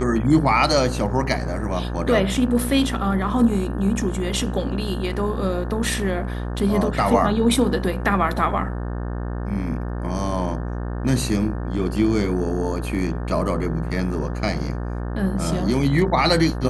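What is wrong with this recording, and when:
mains buzz 60 Hz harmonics 30 −27 dBFS

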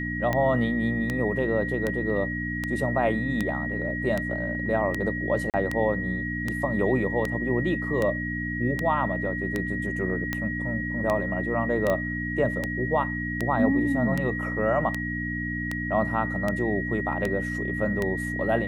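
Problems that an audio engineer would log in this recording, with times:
mains hum 60 Hz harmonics 5 −32 dBFS
scratch tick 78 rpm −13 dBFS
whistle 1,900 Hz −31 dBFS
0:05.50–0:05.54: drop-out 38 ms
0:11.90: click −14 dBFS

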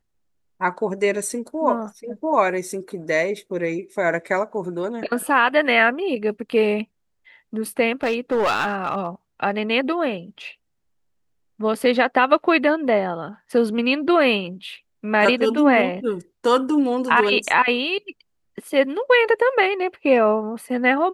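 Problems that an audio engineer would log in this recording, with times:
0:08.03–0:09.07: clipping −16 dBFS

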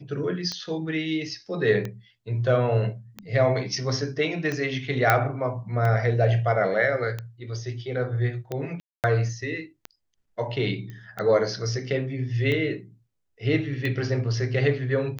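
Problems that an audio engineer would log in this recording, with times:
scratch tick 45 rpm −17 dBFS
0:05.10: click −5 dBFS
0:08.80–0:09.04: drop-out 238 ms
0:10.90: click −27 dBFS

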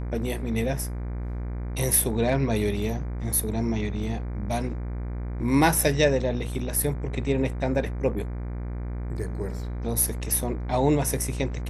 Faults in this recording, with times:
mains buzz 60 Hz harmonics 40 −31 dBFS

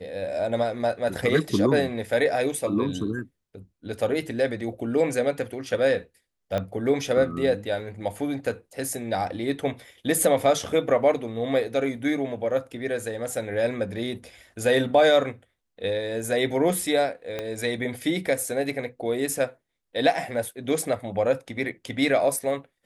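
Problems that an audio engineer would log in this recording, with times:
0:06.58: click −15 dBFS
0:17.39: click −16 dBFS

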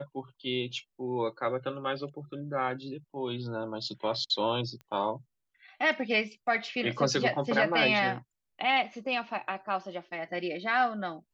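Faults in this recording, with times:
0:04.81: click −34 dBFS

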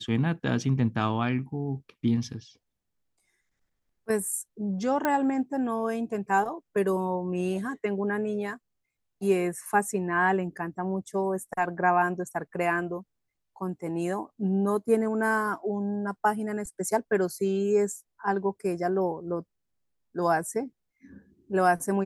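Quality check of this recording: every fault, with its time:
0:05.05: click −12 dBFS

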